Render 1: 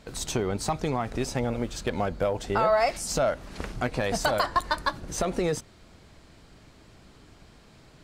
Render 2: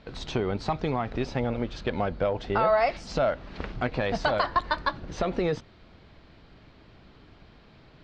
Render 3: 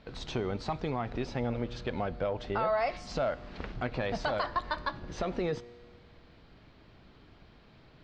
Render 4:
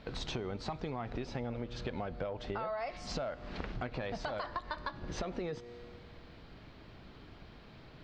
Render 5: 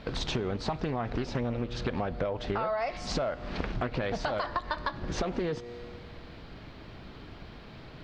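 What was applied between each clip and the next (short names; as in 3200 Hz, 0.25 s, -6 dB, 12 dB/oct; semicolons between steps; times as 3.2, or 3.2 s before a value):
LPF 4300 Hz 24 dB/oct
in parallel at -1 dB: limiter -22.5 dBFS, peak gain reduction 10.5 dB; on the sum: resonator 120 Hz, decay 1.7 s, mix 50%; gain -3.5 dB
compressor 6:1, threshold -39 dBFS, peak gain reduction 13 dB; gain +3.5 dB
Doppler distortion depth 0.42 ms; gain +7 dB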